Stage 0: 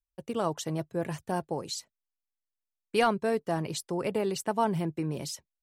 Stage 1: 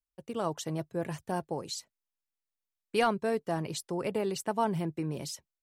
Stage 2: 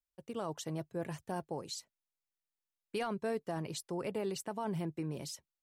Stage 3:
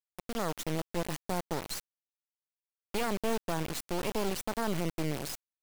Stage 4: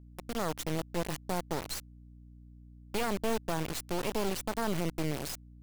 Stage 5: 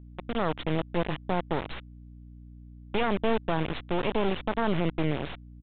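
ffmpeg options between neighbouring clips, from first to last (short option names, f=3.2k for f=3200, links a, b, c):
-af "dynaudnorm=f=240:g=3:m=3.5dB,volume=-5.5dB"
-af "alimiter=limit=-22.5dB:level=0:latency=1:release=16,volume=-4.5dB"
-af "acrusher=bits=4:dc=4:mix=0:aa=0.000001,volume=7dB"
-af "aeval=exprs='val(0)+0.00282*(sin(2*PI*60*n/s)+sin(2*PI*2*60*n/s)/2+sin(2*PI*3*60*n/s)/3+sin(2*PI*4*60*n/s)/4+sin(2*PI*5*60*n/s)/5)':c=same"
-af "aresample=8000,aresample=44100,volume=5.5dB"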